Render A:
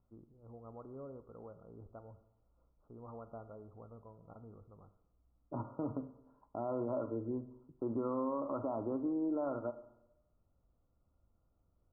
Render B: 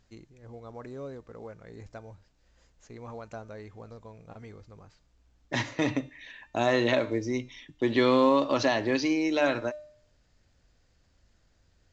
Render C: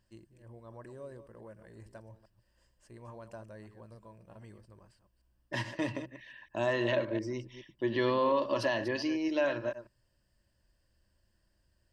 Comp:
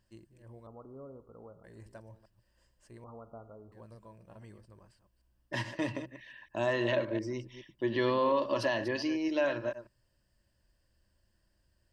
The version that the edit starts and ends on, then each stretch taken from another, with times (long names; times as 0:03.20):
C
0:00.67–0:01.64: punch in from A
0:03.04–0:03.72: punch in from A
not used: B